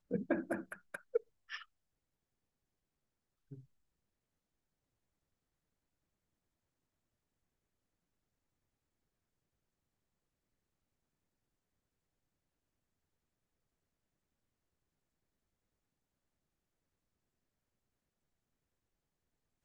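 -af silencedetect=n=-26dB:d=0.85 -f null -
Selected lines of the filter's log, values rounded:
silence_start: 1.17
silence_end: 19.64 | silence_duration: 18.47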